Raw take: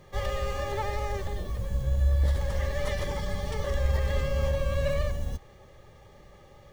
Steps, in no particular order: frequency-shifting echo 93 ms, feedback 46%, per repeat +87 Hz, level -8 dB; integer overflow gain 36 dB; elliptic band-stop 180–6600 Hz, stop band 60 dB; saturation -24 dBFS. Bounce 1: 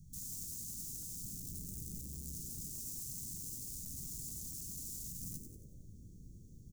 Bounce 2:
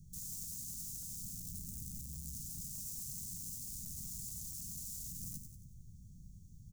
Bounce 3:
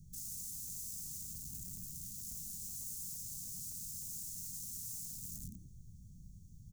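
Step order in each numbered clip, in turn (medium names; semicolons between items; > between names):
saturation > integer overflow > elliptic band-stop > frequency-shifting echo; saturation > integer overflow > frequency-shifting echo > elliptic band-stop; frequency-shifting echo > integer overflow > elliptic band-stop > saturation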